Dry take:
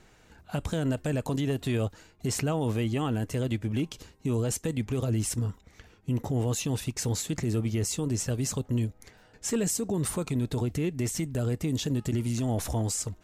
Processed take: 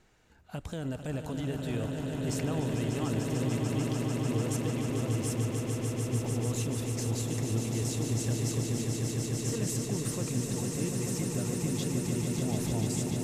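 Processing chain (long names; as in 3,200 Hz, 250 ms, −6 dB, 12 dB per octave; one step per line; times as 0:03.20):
echo that builds up and dies away 148 ms, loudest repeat 8, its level −7 dB
level −7.5 dB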